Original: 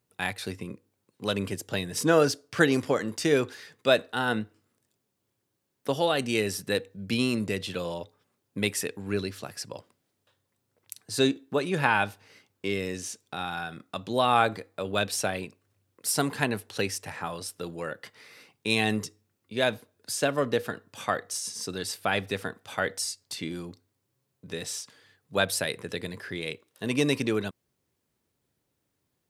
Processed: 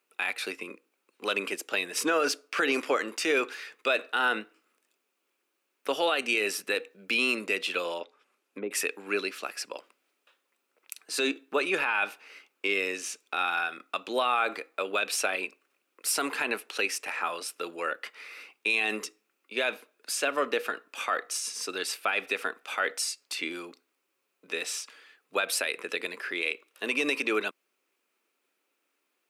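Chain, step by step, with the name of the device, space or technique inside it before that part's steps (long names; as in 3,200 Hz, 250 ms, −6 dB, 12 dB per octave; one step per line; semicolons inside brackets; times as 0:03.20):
0:07.99–0:08.71: treble cut that deepens with the level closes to 460 Hz, closed at −26.5 dBFS
laptop speaker (high-pass filter 300 Hz 24 dB per octave; parametric band 1,300 Hz +8 dB 0.49 octaves; parametric band 2,500 Hz +11.5 dB 0.5 octaves; brickwall limiter −16 dBFS, peak gain reduction 13 dB)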